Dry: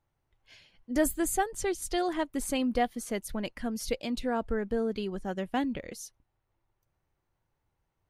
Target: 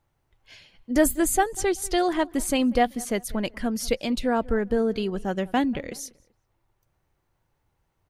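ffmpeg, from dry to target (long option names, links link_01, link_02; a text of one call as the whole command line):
ffmpeg -i in.wav -filter_complex "[0:a]asplit=2[link_01][link_02];[link_02]adelay=192,lowpass=frequency=2400:poles=1,volume=-22dB,asplit=2[link_03][link_04];[link_04]adelay=192,lowpass=frequency=2400:poles=1,volume=0.35[link_05];[link_01][link_03][link_05]amix=inputs=3:normalize=0,volume=6.5dB" out.wav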